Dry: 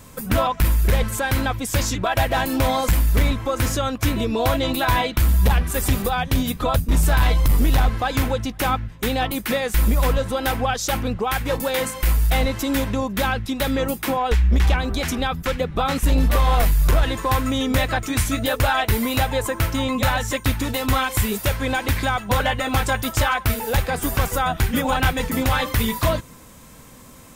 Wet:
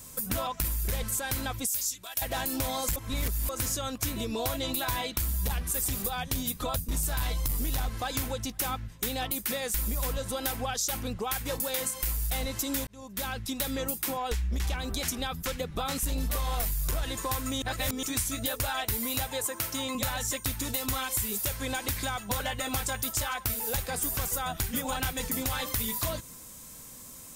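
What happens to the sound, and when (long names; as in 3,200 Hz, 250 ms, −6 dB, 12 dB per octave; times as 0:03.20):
0:01.67–0:02.22: first-order pre-emphasis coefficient 0.9
0:02.96–0:03.49: reverse
0:12.87–0:13.54: fade in
0:17.62–0:18.03: reverse
0:19.27–0:19.95: high-pass filter 240 Hz 6 dB per octave
whole clip: bass and treble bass 0 dB, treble +13 dB; downward compressor 3 to 1, threshold −20 dBFS; level −8.5 dB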